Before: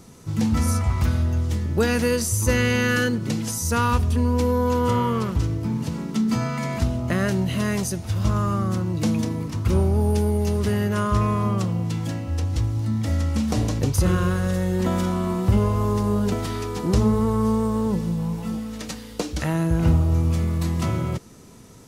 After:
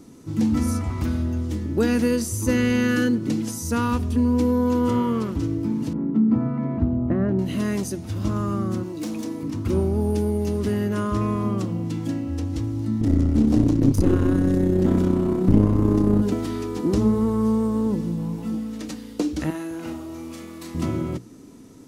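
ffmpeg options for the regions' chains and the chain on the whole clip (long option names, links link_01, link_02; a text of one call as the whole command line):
ffmpeg -i in.wav -filter_complex "[0:a]asettb=1/sr,asplit=3[link_01][link_02][link_03];[link_01]atrim=end=5.934[link_04];[link_02]atrim=start=5.93:end=7.39,asetpts=PTS-STARTPTS,afade=type=in:duration=0.004:curve=qsin,afade=type=out:start_time=1.456:duration=0.004:curve=qsin,lowpass=1100,equalizer=frequency=78:width=0.59:gain=5.5[link_05];[link_03]atrim=start=7.386[link_06];[link_04][link_05]acrossfade=duration=0.004:curve1=hsin:curve2=qsin[link_07];[link_07][link_06]acrossfade=duration=0.004:curve1=qsin:curve2=hsin,asettb=1/sr,asplit=3[link_08][link_09][link_10];[link_08]atrim=end=8.834[link_11];[link_09]atrim=start=8.83:end=9.43,asetpts=PTS-STARTPTS,afade=type=in:duration=0.004:curve=qsin,afade=type=out:start_time=0.596:duration=0.004:curve=qsin,bass=frequency=250:gain=-14,treble=frequency=4000:gain=4,asoftclip=type=hard:threshold=-27dB[link_12];[link_10]atrim=start=9.426[link_13];[link_11][link_12]acrossfade=duration=0.004:curve1=hsin:curve2=qsin[link_14];[link_14][link_13]acrossfade=duration=0.004:curve1=qsin:curve2=hsin,asettb=1/sr,asplit=3[link_15][link_16][link_17];[link_15]atrim=end=13.014[link_18];[link_16]atrim=start=13.01:end=16.22,asetpts=PTS-STARTPTS,afade=type=in:duration=0.004:curve=qsin,afade=type=out:start_time=3.206:duration=0.004:curve=qsin,lowshelf=frequency=320:gain=11.5,aeval=exprs='clip(val(0),-1,0.126)':channel_layout=same,tremolo=f=32:d=0.462[link_19];[link_17]atrim=start=16.216[link_20];[link_18][link_19]acrossfade=duration=0.004:curve1=hsin:curve2=qsin[link_21];[link_21][link_20]acrossfade=duration=0.004:curve1=qsin:curve2=hsin,asettb=1/sr,asplit=3[link_22][link_23][link_24];[link_22]atrim=end=19.504[link_25];[link_23]atrim=start=19.5:end=20.75,asetpts=PTS-STARTPTS,afade=type=in:duration=0.004:curve=qsin,afade=type=out:start_time=1.246:duration=0.004:curve=qsin,highpass=frequency=1100:poles=1,asplit=2[link_26][link_27];[link_27]adelay=40,volume=-6.5dB[link_28];[link_26][link_28]amix=inputs=2:normalize=0,atrim=end_sample=55125[link_29];[link_24]atrim=start=20.746[link_30];[link_25][link_29]acrossfade=duration=0.004:curve1=hsin:curve2=qsin[link_31];[link_31][link_30]acrossfade=duration=0.004:curve1=qsin:curve2=hsin,equalizer=frequency=290:width=2:gain=14.5,bandreject=frequency=60:width_type=h:width=6,bandreject=frequency=120:width_type=h:width=6,bandreject=frequency=180:width_type=h:width=6,volume=-5dB" out.wav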